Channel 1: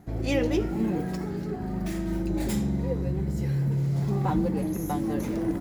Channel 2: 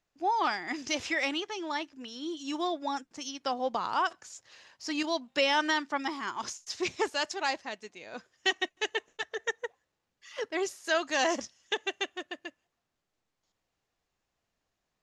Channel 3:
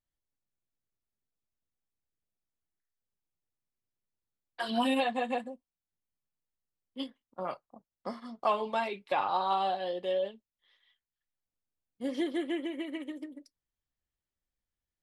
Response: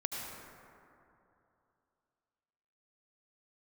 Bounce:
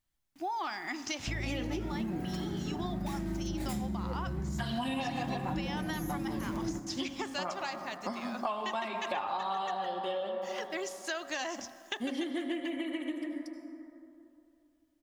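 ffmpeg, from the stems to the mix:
-filter_complex "[0:a]adelay=1200,volume=0dB,asplit=2[a][b];[b]volume=-13.5dB[c];[1:a]bandreject=f=60:t=h:w=6,bandreject=f=120:t=h:w=6,bandreject=f=180:t=h:w=6,bandreject=f=240:t=h:w=6,acompressor=threshold=-44dB:ratio=1.5,acrusher=bits=10:mix=0:aa=0.000001,adelay=200,volume=3dB,asplit=2[d][e];[e]volume=-18dB[f];[2:a]acontrast=68,volume=-3.5dB,asplit=2[g][h];[h]volume=-3.5dB[i];[3:a]atrim=start_sample=2205[j];[c][f][i]amix=inputs=3:normalize=0[k];[k][j]afir=irnorm=-1:irlink=0[l];[a][d][g][l]amix=inputs=4:normalize=0,equalizer=f=470:w=4.3:g=-11.5,bandreject=f=137.8:t=h:w=4,bandreject=f=275.6:t=h:w=4,bandreject=f=413.4:t=h:w=4,bandreject=f=551.2:t=h:w=4,bandreject=f=689:t=h:w=4,bandreject=f=826.8:t=h:w=4,bandreject=f=964.6:t=h:w=4,bandreject=f=1.1024k:t=h:w=4,bandreject=f=1.2402k:t=h:w=4,bandreject=f=1.378k:t=h:w=4,bandreject=f=1.5158k:t=h:w=4,bandreject=f=1.6536k:t=h:w=4,bandreject=f=1.7914k:t=h:w=4,bandreject=f=1.9292k:t=h:w=4,acompressor=threshold=-32dB:ratio=6"

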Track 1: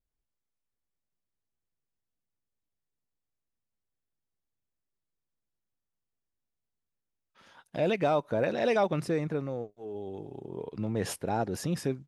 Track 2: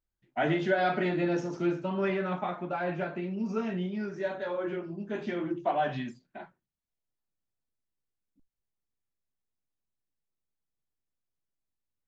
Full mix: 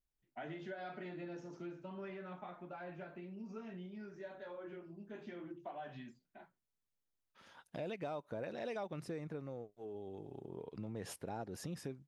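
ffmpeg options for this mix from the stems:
-filter_complex "[0:a]volume=-4dB[a];[1:a]volume=-13.5dB[b];[a][b]amix=inputs=2:normalize=0,acompressor=threshold=-45dB:ratio=2.5"

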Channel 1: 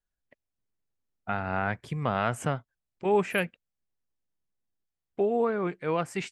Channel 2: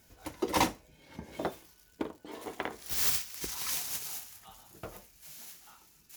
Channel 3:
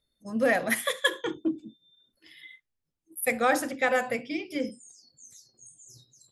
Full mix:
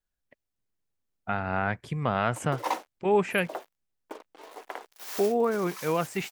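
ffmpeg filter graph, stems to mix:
-filter_complex "[0:a]volume=1dB[a];[1:a]equalizer=f=780:t=o:w=2.9:g=11,acrusher=bits=5:mix=0:aa=0.5,highpass=410,adelay=2100,volume=-10.5dB[b];[a][b]amix=inputs=2:normalize=0"

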